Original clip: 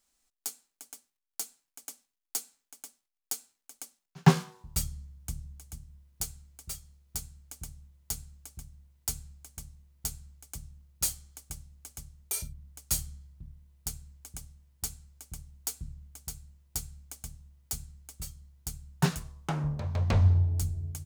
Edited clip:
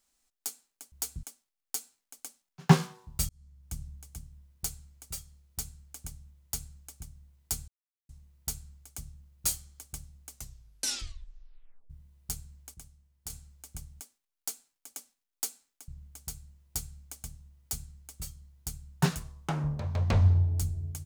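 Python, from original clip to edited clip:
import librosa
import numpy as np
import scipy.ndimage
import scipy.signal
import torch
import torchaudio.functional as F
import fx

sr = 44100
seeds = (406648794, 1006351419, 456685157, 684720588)

y = fx.edit(x, sr, fx.swap(start_s=0.92, length_s=1.88, other_s=15.57, other_length_s=0.31),
    fx.fade_in_span(start_s=4.86, length_s=0.54),
    fx.silence(start_s=9.25, length_s=0.41),
    fx.tape_stop(start_s=11.86, length_s=1.61),
    fx.clip_gain(start_s=14.31, length_s=0.56, db=-7.0), tone=tone)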